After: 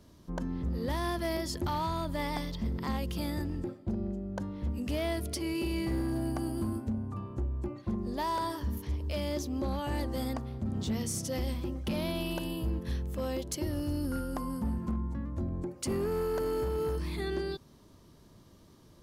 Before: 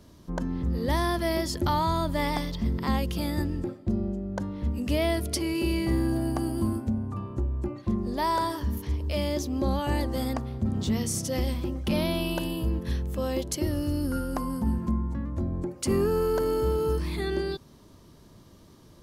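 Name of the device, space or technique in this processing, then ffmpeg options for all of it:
limiter into clipper: -af "alimiter=limit=-18dB:level=0:latency=1:release=125,asoftclip=type=hard:threshold=-21.5dB,volume=-4.5dB"

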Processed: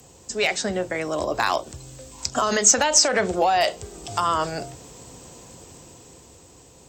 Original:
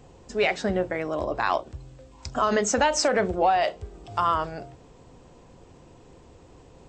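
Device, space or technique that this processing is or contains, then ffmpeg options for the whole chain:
FM broadcast chain: -filter_complex "[0:a]highpass=54,dynaudnorm=f=240:g=11:m=7dB,acrossover=split=140|590|6600[a][b][c][d];[a]acompressor=threshold=-39dB:ratio=4[e];[b]acompressor=threshold=-23dB:ratio=4[f];[c]acompressor=threshold=-18dB:ratio=4[g];[d]acompressor=threshold=-48dB:ratio=4[h];[e][f][g][h]amix=inputs=4:normalize=0,aemphasis=mode=production:type=50fm,alimiter=limit=-10.5dB:level=0:latency=1:release=269,asoftclip=type=hard:threshold=-11.5dB,lowpass=f=15k:w=0.5412,lowpass=f=15k:w=1.3066,aemphasis=mode=production:type=50fm"

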